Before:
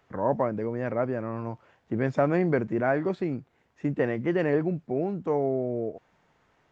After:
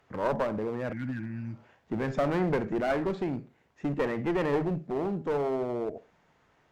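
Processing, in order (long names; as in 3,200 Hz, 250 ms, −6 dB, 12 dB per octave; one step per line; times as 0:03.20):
four-comb reverb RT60 0.31 s, DRR 13.5 dB
healed spectral selection 0:00.95–0:01.67, 340–1,400 Hz after
asymmetric clip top −28 dBFS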